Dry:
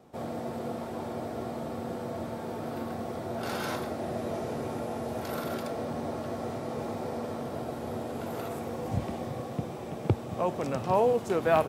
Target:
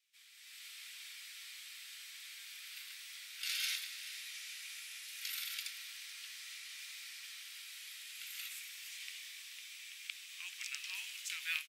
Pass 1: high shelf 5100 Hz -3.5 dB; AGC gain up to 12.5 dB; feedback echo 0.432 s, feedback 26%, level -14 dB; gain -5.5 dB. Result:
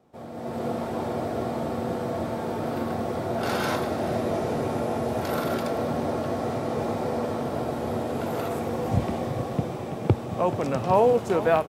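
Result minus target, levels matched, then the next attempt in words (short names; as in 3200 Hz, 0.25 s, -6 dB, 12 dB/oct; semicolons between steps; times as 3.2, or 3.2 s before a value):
2000 Hz band -9.5 dB
steep high-pass 2200 Hz 36 dB/oct; high shelf 5100 Hz -3.5 dB; AGC gain up to 12.5 dB; feedback echo 0.432 s, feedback 26%, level -14 dB; gain -5.5 dB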